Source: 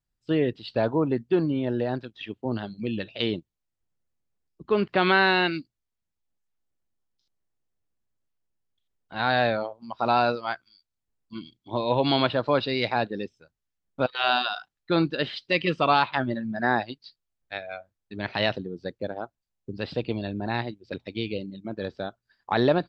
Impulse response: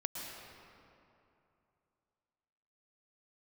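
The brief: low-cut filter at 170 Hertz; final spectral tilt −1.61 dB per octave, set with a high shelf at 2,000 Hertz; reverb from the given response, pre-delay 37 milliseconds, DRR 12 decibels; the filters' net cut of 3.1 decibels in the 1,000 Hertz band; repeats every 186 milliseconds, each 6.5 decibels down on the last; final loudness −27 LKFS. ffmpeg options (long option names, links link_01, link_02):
-filter_complex "[0:a]highpass=170,equalizer=frequency=1000:width_type=o:gain=-6.5,highshelf=frequency=2000:gain=8,aecho=1:1:186|372|558|744|930|1116:0.473|0.222|0.105|0.0491|0.0231|0.0109,asplit=2[link_01][link_02];[1:a]atrim=start_sample=2205,adelay=37[link_03];[link_02][link_03]afir=irnorm=-1:irlink=0,volume=-13.5dB[link_04];[link_01][link_04]amix=inputs=2:normalize=0,volume=-2dB"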